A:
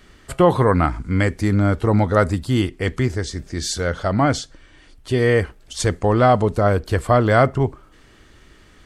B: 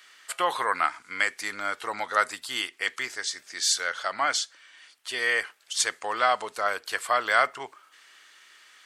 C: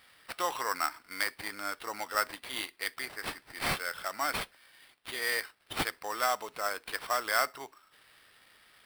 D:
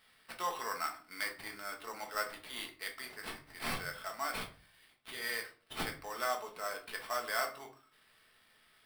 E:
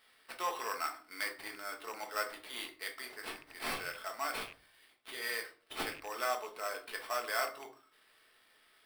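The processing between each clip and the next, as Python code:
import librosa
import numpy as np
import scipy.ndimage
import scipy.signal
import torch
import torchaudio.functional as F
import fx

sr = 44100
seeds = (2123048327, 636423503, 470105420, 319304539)

y1 = scipy.signal.sosfilt(scipy.signal.butter(2, 1400.0, 'highpass', fs=sr, output='sos'), x)
y1 = y1 * librosa.db_to_amplitude(2.0)
y2 = fx.peak_eq(y1, sr, hz=290.0, db=5.0, octaves=0.36)
y2 = fx.sample_hold(y2, sr, seeds[0], rate_hz=6700.0, jitter_pct=0)
y2 = y2 * librosa.db_to_amplitude(-6.5)
y3 = fx.room_shoebox(y2, sr, seeds[1], volume_m3=240.0, walls='furnished', distance_m=1.5)
y3 = y3 * librosa.db_to_amplitude(-8.0)
y4 = fx.rattle_buzz(y3, sr, strikes_db=-55.0, level_db=-37.0)
y4 = fx.low_shelf_res(y4, sr, hz=240.0, db=-7.5, q=1.5)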